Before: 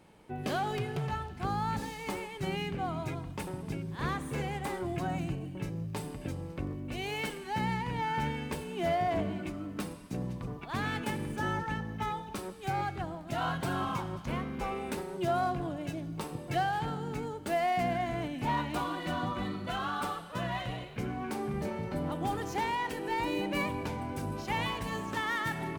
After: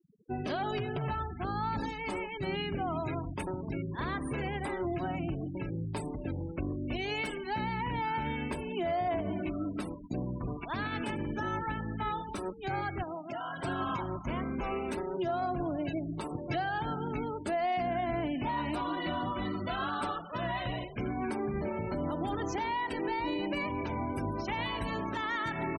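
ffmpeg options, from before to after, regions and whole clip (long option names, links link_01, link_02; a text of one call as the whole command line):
ffmpeg -i in.wav -filter_complex "[0:a]asettb=1/sr,asplit=3[link_01][link_02][link_03];[link_01]atrim=end=13.034[link_04];[link_02]atrim=start=13.03:end=13.64,asetpts=PTS-STARTPTS,afade=type=in:duration=0.004:curve=qsin,afade=type=out:start_time=0.606:duration=0.004:curve=qsin,highpass=frequency=310:poles=1,acompressor=threshold=-38dB:ratio=10:attack=3.2:release=140:knee=1:detection=peak[link_05];[link_03]atrim=start=13.636[link_06];[link_04][link_05]acrossfade=duration=0.004:curve1=hsin:curve2=qsin[link_07];[link_07][link_06]acrossfade=duration=0.004:curve1=qsin:curve2=hsin,afftfilt=real='re*gte(hypot(re,im),0.00708)':imag='im*gte(hypot(re,im),0.00708)':win_size=1024:overlap=0.75,aecho=1:1:3.1:0.34,alimiter=level_in=4.5dB:limit=-24dB:level=0:latency=1:release=100,volume=-4.5dB,volume=3.5dB" out.wav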